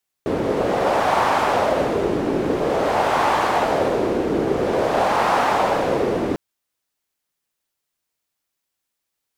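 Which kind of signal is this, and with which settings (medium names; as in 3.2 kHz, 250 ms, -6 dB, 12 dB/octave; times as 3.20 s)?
wind-like swept noise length 6.10 s, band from 360 Hz, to 870 Hz, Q 2, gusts 3, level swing 3 dB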